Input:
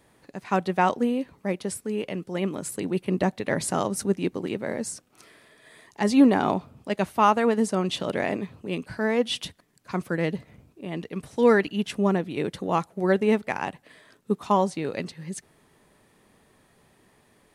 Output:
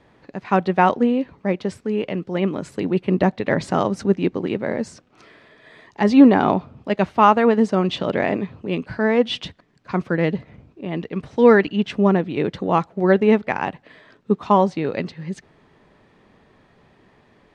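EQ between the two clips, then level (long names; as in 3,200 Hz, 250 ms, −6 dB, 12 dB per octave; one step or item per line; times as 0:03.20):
high-frequency loss of the air 170 metres
+6.5 dB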